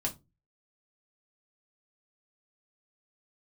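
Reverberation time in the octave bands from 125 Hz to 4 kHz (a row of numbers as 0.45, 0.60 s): 0.50, 0.35, 0.25, 0.20, 0.15, 0.15 s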